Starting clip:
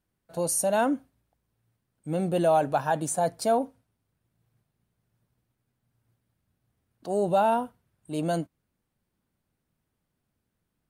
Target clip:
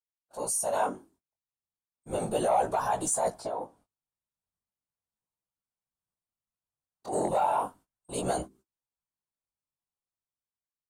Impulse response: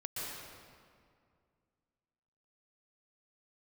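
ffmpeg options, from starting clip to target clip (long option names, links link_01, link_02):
-filter_complex "[0:a]bandreject=frequency=60:width_type=h:width=6,bandreject=frequency=120:width_type=h:width=6,bandreject=frequency=180:width_type=h:width=6,bandreject=frequency=240:width_type=h:width=6,bandreject=frequency=300:width_type=h:width=6,agate=range=-23dB:threshold=-51dB:ratio=16:detection=peak,equalizer=frequency=125:width_type=o:width=1:gain=-6,equalizer=frequency=250:width_type=o:width=1:gain=-9,equalizer=frequency=1000:width_type=o:width=1:gain=8,equalizer=frequency=2000:width_type=o:width=1:gain=-5,equalizer=frequency=8000:width_type=o:width=1:gain=10,dynaudnorm=framelen=670:gausssize=5:maxgain=11.5dB,alimiter=limit=-12.5dB:level=0:latency=1:release=23,asettb=1/sr,asplit=3[link_01][link_02][link_03];[link_01]atrim=end=3.304[link_04];[link_02]atrim=start=3.3:end=7.13,asetpts=PTS-STARTPTS,afade=type=in:duration=0.004:curve=qsin,afade=type=out:start_time=3.826:duration=0.004:curve=qsin,acrossover=split=1000|4600[link_05][link_06][link_07];[link_05]acompressor=threshold=-27dB:ratio=4[link_08];[link_06]acompressor=threshold=-42dB:ratio=4[link_09];[link_07]acompressor=threshold=-53dB:ratio=4[link_10];[link_08][link_09][link_10]amix=inputs=3:normalize=0[link_11];[link_03]atrim=start=7.126[link_12];[link_04][link_11]acrossfade=duration=0.004:curve1=hsin:curve2=qsin[link_13];[link_13][link_12]acrossfade=duration=0.004:curve1=qsin:curve2=hsin,afftfilt=real='hypot(re,im)*cos(2*PI*random(0))':imag='hypot(re,im)*sin(2*PI*random(1))':win_size=512:overlap=0.75,asoftclip=type=tanh:threshold=-16dB,flanger=delay=15.5:depth=7.1:speed=0.35,volume=3dB"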